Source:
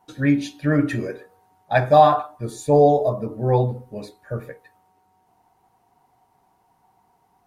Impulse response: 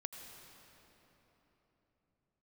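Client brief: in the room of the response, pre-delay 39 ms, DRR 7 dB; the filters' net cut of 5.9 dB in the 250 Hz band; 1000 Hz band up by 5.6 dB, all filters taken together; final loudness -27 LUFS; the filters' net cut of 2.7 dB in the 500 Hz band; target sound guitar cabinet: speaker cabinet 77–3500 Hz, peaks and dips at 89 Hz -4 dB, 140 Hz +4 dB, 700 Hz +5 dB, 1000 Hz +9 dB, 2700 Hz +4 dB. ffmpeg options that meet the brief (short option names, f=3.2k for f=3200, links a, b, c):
-filter_complex "[0:a]equalizer=f=250:t=o:g=-7,equalizer=f=500:t=o:g=-6.5,equalizer=f=1k:t=o:g=4,asplit=2[a][b];[1:a]atrim=start_sample=2205,adelay=39[c];[b][c]afir=irnorm=-1:irlink=0,volume=-4.5dB[d];[a][d]amix=inputs=2:normalize=0,highpass=77,equalizer=f=89:t=q:w=4:g=-4,equalizer=f=140:t=q:w=4:g=4,equalizer=f=700:t=q:w=4:g=5,equalizer=f=1k:t=q:w=4:g=9,equalizer=f=2.7k:t=q:w=4:g=4,lowpass=f=3.5k:w=0.5412,lowpass=f=3.5k:w=1.3066,volume=-10dB"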